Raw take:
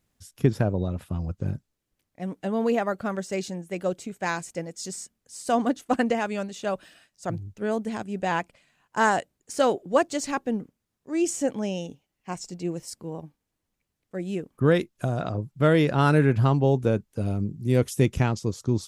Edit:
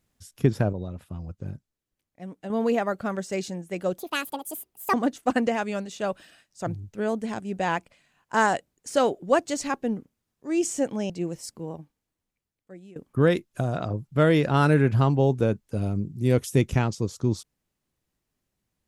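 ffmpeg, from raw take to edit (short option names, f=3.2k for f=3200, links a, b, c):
-filter_complex "[0:a]asplit=7[a][b][c][d][e][f][g];[a]atrim=end=0.732[h];[b]atrim=start=0.728:end=2.502,asetpts=PTS-STARTPTS,volume=-6.5dB[i];[c]atrim=start=2.498:end=3.984[j];[d]atrim=start=3.98:end=5.57,asetpts=PTS-STARTPTS,asetrate=73206,aresample=44100,atrim=end_sample=42240,asetpts=PTS-STARTPTS[k];[e]atrim=start=5.566:end=11.732[l];[f]atrim=start=12.538:end=14.4,asetpts=PTS-STARTPTS,afade=t=out:st=0.592:d=1.27:silence=0.0841395[m];[g]atrim=start=14.4,asetpts=PTS-STARTPTS,afade=t=in:d=0.004:c=hsin:silence=0.0841395[n];[h][i]acrossfade=d=0.004:c1=hsin:c2=hsin[o];[o][j]acrossfade=d=0.004:c1=hsin:c2=hsin[p];[p][k]acrossfade=d=0.004:c1=hsin:c2=hsin[q];[q][l]acrossfade=d=0.004:c1=hsin:c2=hsin[r];[m][n]concat=n=2:v=0:a=1[s];[r][s]acrossfade=d=0.004:c1=hsin:c2=hsin"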